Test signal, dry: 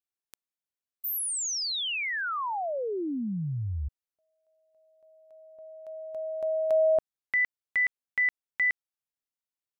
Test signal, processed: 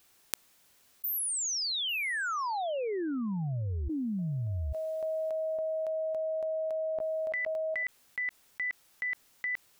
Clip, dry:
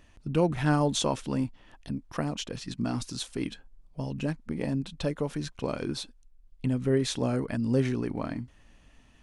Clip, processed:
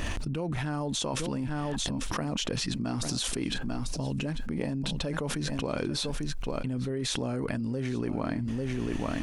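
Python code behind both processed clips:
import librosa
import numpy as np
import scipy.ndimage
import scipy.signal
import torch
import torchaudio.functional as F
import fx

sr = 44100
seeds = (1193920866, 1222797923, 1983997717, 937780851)

y = x + 10.0 ** (-18.5 / 20.0) * np.pad(x, (int(844 * sr / 1000.0), 0))[:len(x)]
y = fx.env_flatten(y, sr, amount_pct=100)
y = F.gain(torch.from_numpy(y), -10.5).numpy()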